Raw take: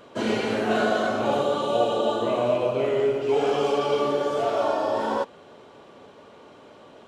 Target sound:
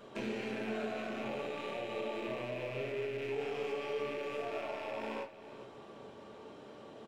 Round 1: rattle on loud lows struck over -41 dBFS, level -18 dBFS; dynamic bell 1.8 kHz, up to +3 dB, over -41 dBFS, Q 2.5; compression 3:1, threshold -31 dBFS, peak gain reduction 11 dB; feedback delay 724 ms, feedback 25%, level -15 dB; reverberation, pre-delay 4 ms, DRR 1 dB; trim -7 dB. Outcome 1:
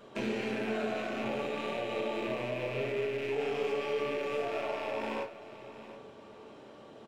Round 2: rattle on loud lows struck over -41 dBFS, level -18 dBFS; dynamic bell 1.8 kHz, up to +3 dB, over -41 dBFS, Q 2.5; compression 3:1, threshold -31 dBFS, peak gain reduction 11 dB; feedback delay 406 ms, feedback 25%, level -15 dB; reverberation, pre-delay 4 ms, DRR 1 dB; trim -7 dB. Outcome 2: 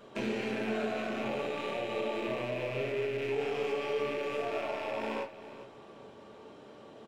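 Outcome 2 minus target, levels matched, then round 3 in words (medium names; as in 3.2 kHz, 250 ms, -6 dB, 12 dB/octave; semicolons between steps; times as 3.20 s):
compression: peak gain reduction -4.5 dB
rattle on loud lows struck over -41 dBFS, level -18 dBFS; dynamic bell 1.8 kHz, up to +3 dB, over -41 dBFS, Q 2.5; compression 3:1, threshold -38 dBFS, peak gain reduction 15.5 dB; feedback delay 406 ms, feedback 25%, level -15 dB; reverberation, pre-delay 4 ms, DRR 1 dB; trim -7 dB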